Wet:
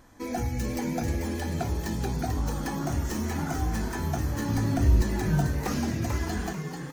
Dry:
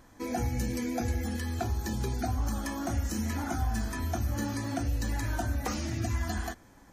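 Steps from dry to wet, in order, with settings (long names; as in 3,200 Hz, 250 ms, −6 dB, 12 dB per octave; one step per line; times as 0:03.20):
stylus tracing distortion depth 0.072 ms
0:04.49–0:05.02: low-shelf EQ 230 Hz +10.5 dB
echo with shifted repeats 440 ms, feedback 40%, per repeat +89 Hz, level −6 dB
level +1 dB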